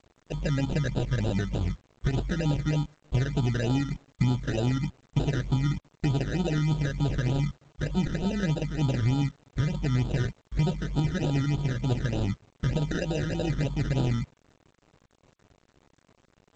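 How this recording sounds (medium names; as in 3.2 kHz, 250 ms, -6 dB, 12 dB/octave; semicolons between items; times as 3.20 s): aliases and images of a low sample rate 1.1 kHz, jitter 0%; phasing stages 12, 3.3 Hz, lowest notch 780–2000 Hz; a quantiser's noise floor 10-bit, dither none; G.722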